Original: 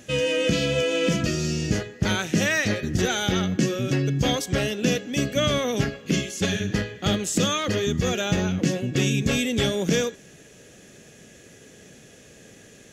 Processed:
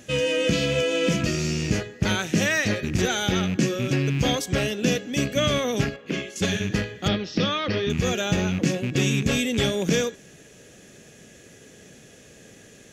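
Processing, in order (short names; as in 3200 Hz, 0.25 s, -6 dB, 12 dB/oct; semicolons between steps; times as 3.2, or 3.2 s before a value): rattling part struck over -27 dBFS, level -24 dBFS; 5.96–6.36 tone controls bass -10 dB, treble -14 dB; 7.08–7.9 Chebyshev low-pass 5500 Hz, order 6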